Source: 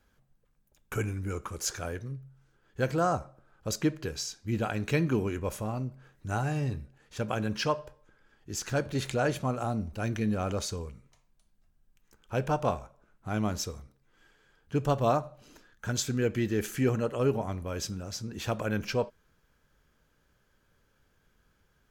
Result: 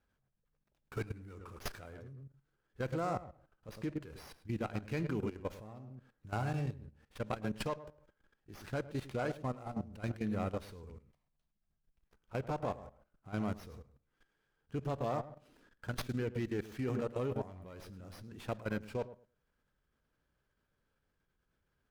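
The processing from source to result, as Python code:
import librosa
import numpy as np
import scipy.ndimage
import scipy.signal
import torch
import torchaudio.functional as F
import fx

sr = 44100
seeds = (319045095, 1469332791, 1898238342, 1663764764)

y = fx.echo_filtered(x, sr, ms=107, feedback_pct=17, hz=1100.0, wet_db=-7.0)
y = fx.level_steps(y, sr, step_db=15)
y = fx.running_max(y, sr, window=5)
y = y * librosa.db_to_amplitude(-4.5)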